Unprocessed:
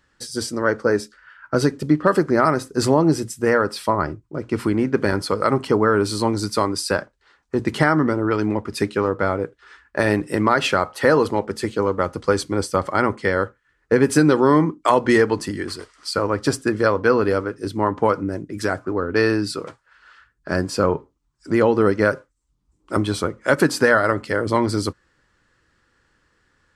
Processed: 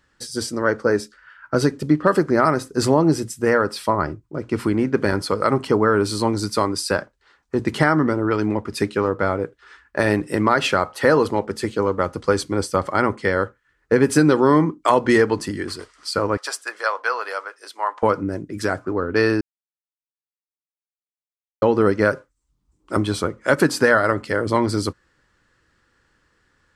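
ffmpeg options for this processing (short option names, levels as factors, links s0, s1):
-filter_complex "[0:a]asettb=1/sr,asplit=3[s0][s1][s2];[s0]atrim=end=16.374[s3];[s1]atrim=start=16.37:end=18.03,asetpts=PTS-STARTPTS,afade=t=in:d=0.004:c=qsin,afade=t=out:st=1.656:d=0.004:c=qsin,highpass=f=690:w=0.5412,highpass=f=690:w=1.3066[s4];[s2]atrim=start=18.026[s5];[s3][s4]acrossfade=d=0.004:c1=hsin:c2=qsin[s6];[s6][s5]acrossfade=d=0.004:c1=qsin:c2=hsin,asplit=3[s7][s8][s9];[s7]atrim=end=19.41,asetpts=PTS-STARTPTS,afade=t=out:st=19.406:d=0.004:c=hsin[s10];[s8]atrim=start=19.41:end=21.62,asetpts=PTS-STARTPTS,volume=0[s11];[s9]atrim=start=21.62,asetpts=PTS-STARTPTS,afade=t=in:d=0.004:c=hsin[s12];[s10][s11][s12]concat=n=3:v=0:a=1"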